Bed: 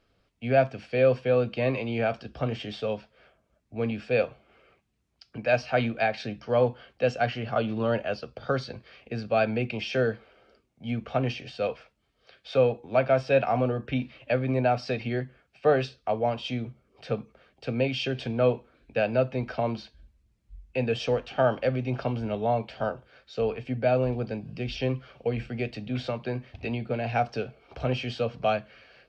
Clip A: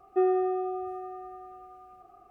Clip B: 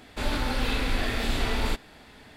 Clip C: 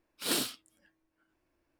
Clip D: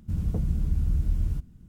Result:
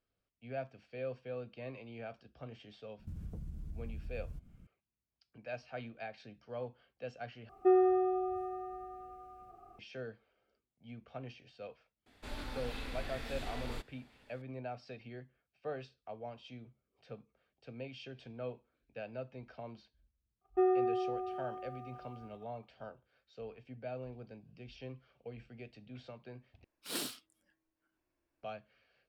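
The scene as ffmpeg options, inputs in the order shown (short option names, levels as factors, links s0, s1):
-filter_complex "[1:a]asplit=2[s0][s1];[0:a]volume=0.112[s2];[4:a]acompressor=threshold=0.0178:ratio=4:attack=21:release=123:knee=1:detection=rms[s3];[s0]lowshelf=f=200:g=7[s4];[s1]agate=range=0.0794:threshold=0.00316:ratio=3:release=32:detection=rms[s5];[s2]asplit=3[s6][s7][s8];[s6]atrim=end=7.494[s9];[s4]atrim=end=2.3,asetpts=PTS-STARTPTS,volume=0.708[s10];[s7]atrim=start=9.786:end=26.644[s11];[3:a]atrim=end=1.79,asetpts=PTS-STARTPTS,volume=0.398[s12];[s8]atrim=start=28.426[s13];[s3]atrim=end=1.68,asetpts=PTS-STARTPTS,volume=0.398,afade=t=in:d=0.004:c=hsin,afade=t=out:st=1.676:d=0.004:c=hsin,adelay=2990[s14];[2:a]atrim=end=2.36,asetpts=PTS-STARTPTS,volume=0.168,afade=t=in:d=0.004:c=hsin,afade=t=out:st=2.356:d=0.004:c=hsin,adelay=12060[s15];[s5]atrim=end=2.3,asetpts=PTS-STARTPTS,volume=0.596,afade=t=in:d=0.004:c=hsin,afade=t=out:st=2.296:d=0.004:c=hsin,adelay=20410[s16];[s9][s10]acrossfade=d=0.004:c1=hsin:c2=hsin[s17];[s17][s11]acrossfade=d=0.004:c1=hsin:c2=hsin[s18];[s18][s12]acrossfade=d=0.004:c1=hsin:c2=hsin[s19];[s19][s13]acrossfade=d=0.004:c1=hsin:c2=hsin[s20];[s20][s14][s15][s16]amix=inputs=4:normalize=0"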